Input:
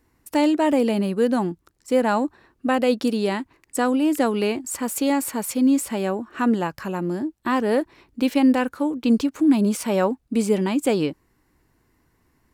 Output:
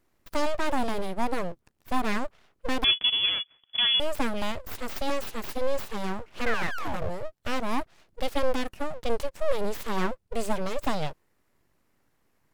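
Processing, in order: 6.46–7.09 painted sound fall 250–1900 Hz -24 dBFS; full-wave rectifier; 2.84–4 inverted band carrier 3400 Hz; gain -4.5 dB

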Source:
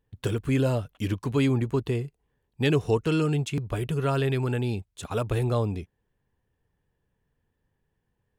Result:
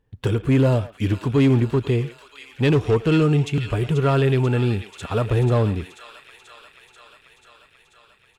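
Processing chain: on a send: thin delay 0.487 s, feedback 73%, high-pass 1800 Hz, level -8.5 dB; on the sum: overloaded stage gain 19 dB; high shelf 6500 Hz -10.5 dB; speakerphone echo 0.11 s, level -14 dB; harmonic-percussive split percussive -3 dB; gain +7.5 dB

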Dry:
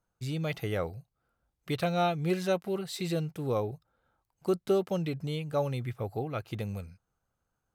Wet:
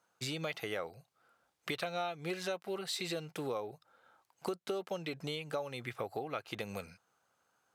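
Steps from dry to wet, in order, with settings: weighting filter A; compressor 6:1, threshold -45 dBFS, peak gain reduction 18.5 dB; gain +9.5 dB

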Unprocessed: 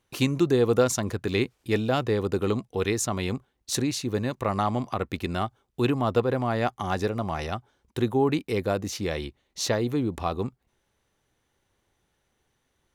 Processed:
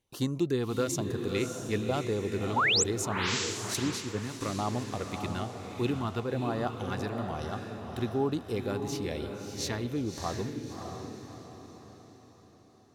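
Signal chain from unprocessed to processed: LFO notch sine 1.1 Hz 510–2500 Hz; 2.56–2.84 painted sound rise 780–8300 Hz -19 dBFS; on a send: diffused feedback echo 0.62 s, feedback 45%, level -5.5 dB; 3.74–4.41 on the sum: three-band expander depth 100%; gain -6 dB

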